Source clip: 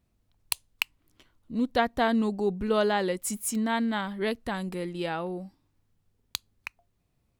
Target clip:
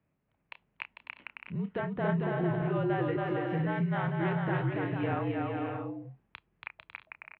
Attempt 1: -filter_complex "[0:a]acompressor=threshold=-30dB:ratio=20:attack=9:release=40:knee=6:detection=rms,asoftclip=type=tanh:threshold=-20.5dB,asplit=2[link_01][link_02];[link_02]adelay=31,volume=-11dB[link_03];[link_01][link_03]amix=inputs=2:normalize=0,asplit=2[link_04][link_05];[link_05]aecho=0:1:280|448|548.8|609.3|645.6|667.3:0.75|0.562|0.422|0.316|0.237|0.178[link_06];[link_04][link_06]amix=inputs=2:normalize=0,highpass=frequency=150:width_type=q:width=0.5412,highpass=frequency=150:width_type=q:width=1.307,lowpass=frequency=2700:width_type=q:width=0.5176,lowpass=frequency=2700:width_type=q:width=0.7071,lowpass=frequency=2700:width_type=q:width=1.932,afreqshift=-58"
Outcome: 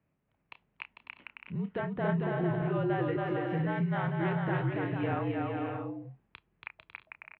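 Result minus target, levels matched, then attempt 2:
soft clipping: distortion +14 dB
-filter_complex "[0:a]acompressor=threshold=-30dB:ratio=20:attack=9:release=40:knee=6:detection=rms,asoftclip=type=tanh:threshold=-11dB,asplit=2[link_01][link_02];[link_02]adelay=31,volume=-11dB[link_03];[link_01][link_03]amix=inputs=2:normalize=0,asplit=2[link_04][link_05];[link_05]aecho=0:1:280|448|548.8|609.3|645.6|667.3:0.75|0.562|0.422|0.316|0.237|0.178[link_06];[link_04][link_06]amix=inputs=2:normalize=0,highpass=frequency=150:width_type=q:width=0.5412,highpass=frequency=150:width_type=q:width=1.307,lowpass=frequency=2700:width_type=q:width=0.5176,lowpass=frequency=2700:width_type=q:width=0.7071,lowpass=frequency=2700:width_type=q:width=1.932,afreqshift=-58"

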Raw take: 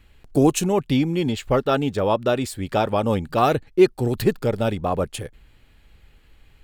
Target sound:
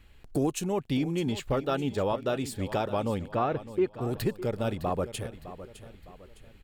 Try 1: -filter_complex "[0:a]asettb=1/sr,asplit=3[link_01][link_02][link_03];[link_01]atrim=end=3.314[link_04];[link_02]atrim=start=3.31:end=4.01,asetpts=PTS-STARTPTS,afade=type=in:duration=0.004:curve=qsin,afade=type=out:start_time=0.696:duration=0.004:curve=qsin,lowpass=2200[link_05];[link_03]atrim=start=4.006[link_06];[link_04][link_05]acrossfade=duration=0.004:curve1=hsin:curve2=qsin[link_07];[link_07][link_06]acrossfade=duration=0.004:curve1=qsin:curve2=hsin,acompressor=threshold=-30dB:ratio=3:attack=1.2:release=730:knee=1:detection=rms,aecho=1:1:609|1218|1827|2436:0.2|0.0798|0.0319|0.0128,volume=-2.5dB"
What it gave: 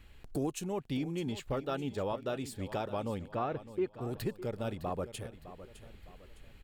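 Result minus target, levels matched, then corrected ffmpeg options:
downward compressor: peak gain reduction +6.5 dB
-filter_complex "[0:a]asettb=1/sr,asplit=3[link_01][link_02][link_03];[link_01]atrim=end=3.314[link_04];[link_02]atrim=start=3.31:end=4.01,asetpts=PTS-STARTPTS,afade=type=in:duration=0.004:curve=qsin,afade=type=out:start_time=0.696:duration=0.004:curve=qsin,lowpass=2200[link_05];[link_03]atrim=start=4.006[link_06];[link_04][link_05]acrossfade=duration=0.004:curve1=hsin:curve2=qsin[link_07];[link_07][link_06]acrossfade=duration=0.004:curve1=qsin:curve2=hsin,acompressor=threshold=-20dB:ratio=3:attack=1.2:release=730:knee=1:detection=rms,aecho=1:1:609|1218|1827|2436:0.2|0.0798|0.0319|0.0128,volume=-2.5dB"

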